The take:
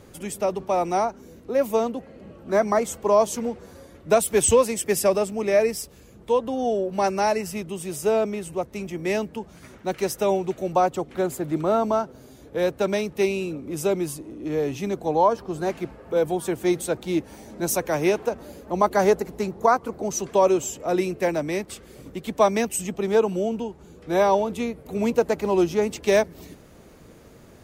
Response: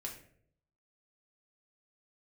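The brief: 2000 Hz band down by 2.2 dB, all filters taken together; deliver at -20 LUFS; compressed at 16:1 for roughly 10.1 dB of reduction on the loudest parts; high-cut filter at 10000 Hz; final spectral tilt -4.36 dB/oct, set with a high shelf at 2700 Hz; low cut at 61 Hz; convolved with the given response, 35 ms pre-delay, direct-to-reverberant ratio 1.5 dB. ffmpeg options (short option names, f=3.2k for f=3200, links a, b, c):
-filter_complex "[0:a]highpass=61,lowpass=10k,equalizer=f=2k:t=o:g=-5,highshelf=f=2.7k:g=5,acompressor=threshold=-23dB:ratio=16,asplit=2[a][b];[1:a]atrim=start_sample=2205,adelay=35[c];[b][c]afir=irnorm=-1:irlink=0,volume=0dB[d];[a][d]amix=inputs=2:normalize=0,volume=7dB"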